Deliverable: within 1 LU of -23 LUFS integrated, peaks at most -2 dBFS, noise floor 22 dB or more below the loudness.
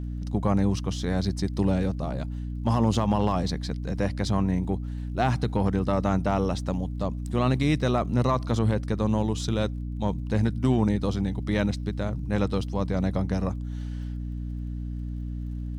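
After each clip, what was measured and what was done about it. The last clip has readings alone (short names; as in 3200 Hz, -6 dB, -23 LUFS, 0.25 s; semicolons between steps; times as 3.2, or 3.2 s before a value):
ticks 34/s; hum 60 Hz; harmonics up to 300 Hz; hum level -30 dBFS; loudness -27.0 LUFS; peak -11.5 dBFS; loudness target -23.0 LUFS
-> de-click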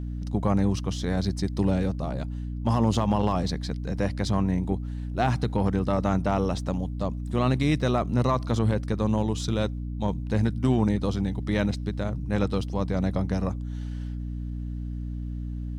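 ticks 0/s; hum 60 Hz; harmonics up to 300 Hz; hum level -30 dBFS
-> notches 60/120/180/240/300 Hz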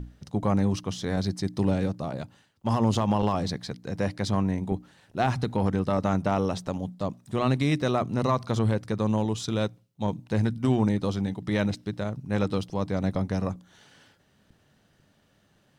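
hum none; loudness -27.5 LUFS; peak -12.0 dBFS; loudness target -23.0 LUFS
-> gain +4.5 dB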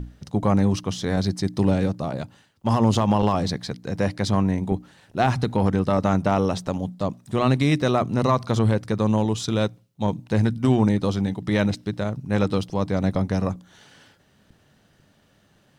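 loudness -23.0 LUFS; peak -7.5 dBFS; noise floor -61 dBFS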